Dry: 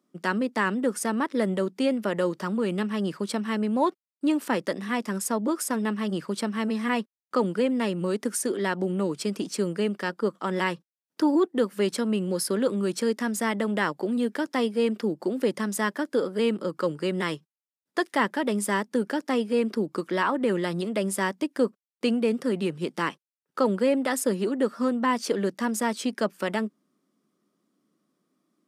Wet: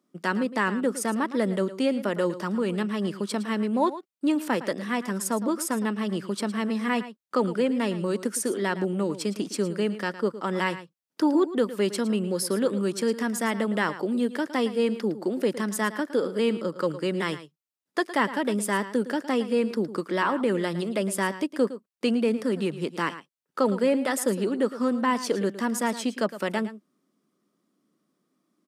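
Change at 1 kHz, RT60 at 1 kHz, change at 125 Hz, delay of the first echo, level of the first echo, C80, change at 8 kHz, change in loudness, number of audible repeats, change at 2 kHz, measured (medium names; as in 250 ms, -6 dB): 0.0 dB, no reverb, 0.0 dB, 111 ms, -14.0 dB, no reverb, 0.0 dB, 0.0 dB, 1, 0.0 dB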